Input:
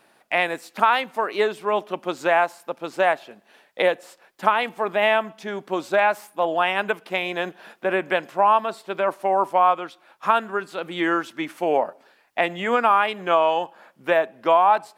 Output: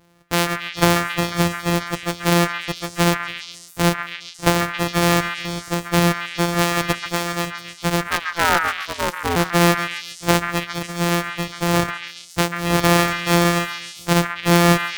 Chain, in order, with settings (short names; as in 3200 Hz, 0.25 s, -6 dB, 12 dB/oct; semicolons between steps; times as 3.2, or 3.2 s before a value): sample sorter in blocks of 256 samples; 8.07–9.35 ring modulator 1500 Hz -> 590 Hz; delay with a stepping band-pass 0.137 s, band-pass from 1600 Hz, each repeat 0.7 oct, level -2 dB; gain +2 dB